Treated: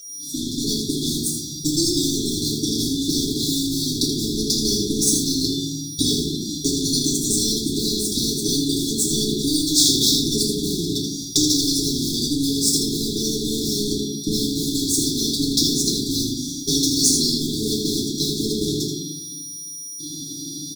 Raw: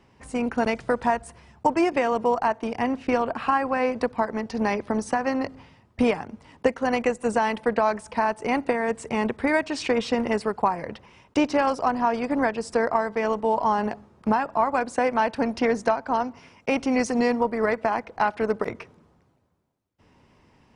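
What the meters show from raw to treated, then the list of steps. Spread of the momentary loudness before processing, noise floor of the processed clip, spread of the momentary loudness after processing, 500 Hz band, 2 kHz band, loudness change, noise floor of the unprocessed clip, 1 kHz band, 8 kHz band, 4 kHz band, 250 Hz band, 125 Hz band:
5 LU, -34 dBFS, 8 LU, -5.0 dB, under -40 dB, +4.5 dB, -61 dBFS, under -40 dB, +24.0 dB, +21.0 dB, +5.0 dB, +13.5 dB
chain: fade-in on the opening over 1.45 s; high-pass 220 Hz 12 dB/octave; comb 6.5 ms, depth 60%; in parallel at +2 dB: compression, threshold -29 dBFS, peak gain reduction 15.5 dB; on the sum: whistle 1.9 kHz -35 dBFS; crossover distortion -38 dBFS; brick-wall FIR band-stop 400–3300 Hz; on a send: delay 80 ms -7.5 dB; on the sum: FDN reverb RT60 0.65 s, low-frequency decay 1×, high-frequency decay 0.55×, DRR -4 dB; spectrum-flattening compressor 4:1; trim -4.5 dB

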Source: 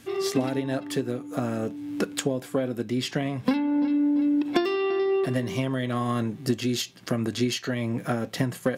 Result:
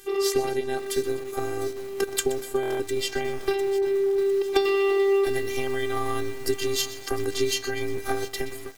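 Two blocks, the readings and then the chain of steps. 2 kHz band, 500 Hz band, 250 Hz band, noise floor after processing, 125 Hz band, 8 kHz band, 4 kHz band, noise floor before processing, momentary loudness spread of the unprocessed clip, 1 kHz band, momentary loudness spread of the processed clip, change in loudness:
+2.5 dB, +5.0 dB, -8.0 dB, -37 dBFS, -9.5 dB, +5.0 dB, +2.5 dB, -45 dBFS, 6 LU, +2.0 dB, 8 LU, +0.5 dB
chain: fade out at the end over 0.52 s; treble shelf 9.5 kHz +11 dB; robot voice 395 Hz; feedback delay 124 ms, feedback 47%, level -15 dB; buffer glitch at 2.61 s, samples 1024, times 7; bit-crushed delay 703 ms, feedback 55%, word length 6-bit, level -13 dB; trim +3 dB

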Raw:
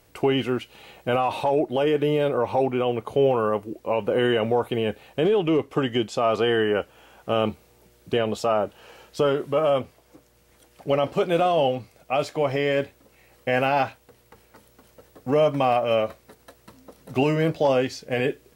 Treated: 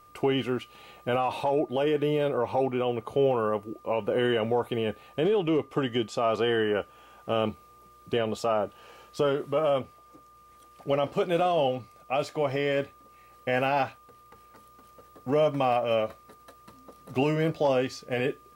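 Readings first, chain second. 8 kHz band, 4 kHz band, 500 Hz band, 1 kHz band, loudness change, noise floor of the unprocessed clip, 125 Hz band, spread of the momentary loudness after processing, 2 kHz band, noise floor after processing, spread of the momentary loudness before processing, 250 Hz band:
no reading, -4.0 dB, -4.0 dB, -4.0 dB, -4.0 dB, -59 dBFS, -4.0 dB, 9 LU, -4.0 dB, -55 dBFS, 9 LU, -4.0 dB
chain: whistle 1.2 kHz -49 dBFS; trim -4 dB

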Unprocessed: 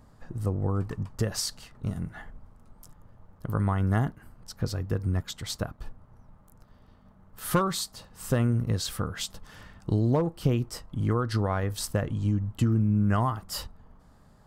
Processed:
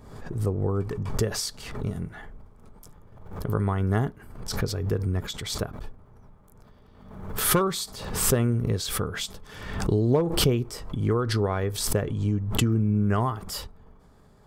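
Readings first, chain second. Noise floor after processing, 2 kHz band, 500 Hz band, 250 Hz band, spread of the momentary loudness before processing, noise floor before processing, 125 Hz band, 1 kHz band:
-54 dBFS, +3.5 dB, +5.0 dB, +1.5 dB, 12 LU, -57 dBFS, +1.0 dB, +1.0 dB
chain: small resonant body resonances 410/2300/3400 Hz, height 10 dB, ringing for 45 ms; swell ahead of each attack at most 57 dB/s

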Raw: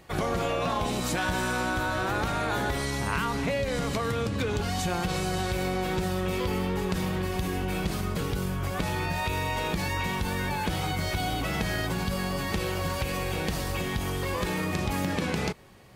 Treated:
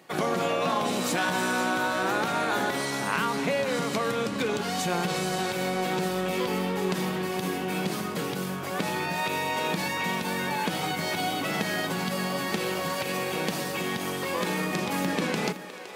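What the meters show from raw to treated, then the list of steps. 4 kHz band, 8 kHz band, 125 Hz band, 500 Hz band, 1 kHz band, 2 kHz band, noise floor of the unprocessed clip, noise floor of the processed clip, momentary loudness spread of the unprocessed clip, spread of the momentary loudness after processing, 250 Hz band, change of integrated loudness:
+2.5 dB, +2.5 dB, -5.5 dB, +2.0 dB, +2.5 dB, +2.5 dB, -31 dBFS, -33 dBFS, 2 LU, 4 LU, +1.0 dB, +1.0 dB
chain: high-pass 170 Hz 24 dB/octave; in parallel at -9 dB: crossover distortion -39 dBFS; on the sum: two-band feedback delay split 390 Hz, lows 84 ms, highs 514 ms, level -12.5 dB

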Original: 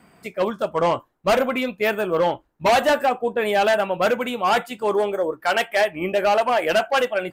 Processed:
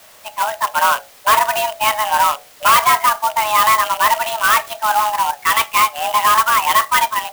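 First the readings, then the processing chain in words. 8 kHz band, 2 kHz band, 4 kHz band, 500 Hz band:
+16.5 dB, +6.5 dB, +8.0 dB, -7.5 dB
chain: rattle on loud lows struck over -36 dBFS, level -24 dBFS; level rider gain up to 4 dB; hum notches 60/120/180/240/300/360/420 Hz; in parallel at -5 dB: word length cut 6-bit, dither triangular; on the sum: frequency shift +430 Hz; sampling jitter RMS 0.039 ms; trim -2.5 dB

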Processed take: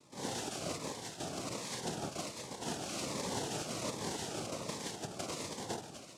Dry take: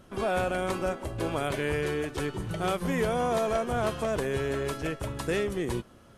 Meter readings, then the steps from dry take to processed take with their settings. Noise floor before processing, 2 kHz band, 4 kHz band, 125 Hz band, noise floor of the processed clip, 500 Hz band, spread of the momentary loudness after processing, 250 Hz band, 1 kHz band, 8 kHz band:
-54 dBFS, -12.5 dB, -1.0 dB, -12.0 dB, -51 dBFS, -14.0 dB, 4 LU, -10.0 dB, -10.5 dB, +3.5 dB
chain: differentiator; echo whose repeats swap between lows and highs 124 ms, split 1.6 kHz, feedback 76%, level -8 dB; decimation with a swept rate 13×, swing 100% 1.6 Hz; peak limiter -36.5 dBFS, peak gain reduction 8.5 dB; high-order bell 1.7 kHz -9 dB; noise-vocoded speech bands 2; Shepard-style phaser falling 1.3 Hz; trim +10.5 dB

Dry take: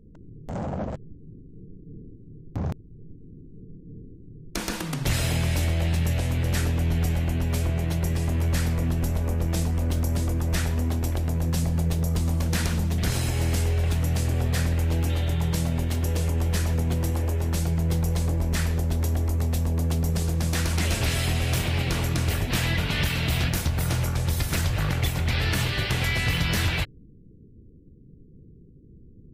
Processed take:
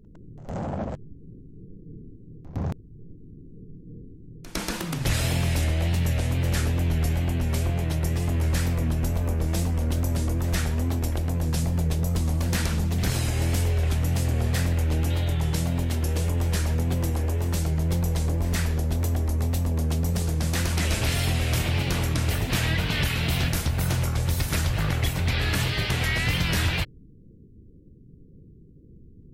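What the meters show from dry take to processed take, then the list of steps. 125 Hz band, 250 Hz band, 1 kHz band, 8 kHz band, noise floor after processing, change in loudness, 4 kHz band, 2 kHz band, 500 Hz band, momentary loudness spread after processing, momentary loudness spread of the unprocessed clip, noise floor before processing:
0.0 dB, 0.0 dB, 0.0 dB, 0.0 dB, -49 dBFS, 0.0 dB, 0.0 dB, 0.0 dB, 0.0 dB, 7 LU, 7 LU, -49 dBFS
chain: reverse echo 106 ms -16.5 dB; wow and flutter 76 cents

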